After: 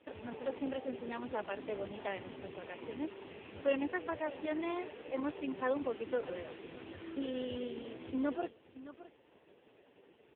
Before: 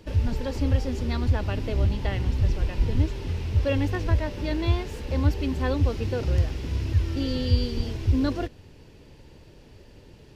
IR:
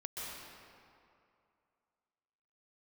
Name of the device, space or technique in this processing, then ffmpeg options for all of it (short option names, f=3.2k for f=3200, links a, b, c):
satellite phone: -af "highpass=360,lowpass=3.4k,aecho=1:1:617:0.158,volume=-3.5dB" -ar 8000 -c:a libopencore_amrnb -b:a 4750